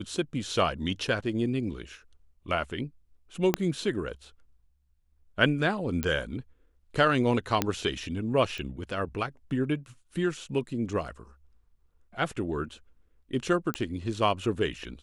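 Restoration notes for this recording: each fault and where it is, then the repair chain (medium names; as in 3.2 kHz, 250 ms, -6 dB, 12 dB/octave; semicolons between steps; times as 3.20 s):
3.54 s: pop -9 dBFS
6.03 s: pop -13 dBFS
7.62 s: pop -9 dBFS
8.58 s: pop -24 dBFS
13.74 s: pop -15 dBFS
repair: de-click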